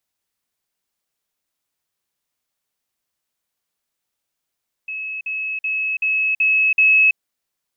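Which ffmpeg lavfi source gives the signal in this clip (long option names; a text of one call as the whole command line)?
ffmpeg -f lavfi -i "aevalsrc='pow(10,(-25+3*floor(t/0.38))/20)*sin(2*PI*2580*t)*clip(min(mod(t,0.38),0.33-mod(t,0.38))/0.005,0,1)':duration=2.28:sample_rate=44100" out.wav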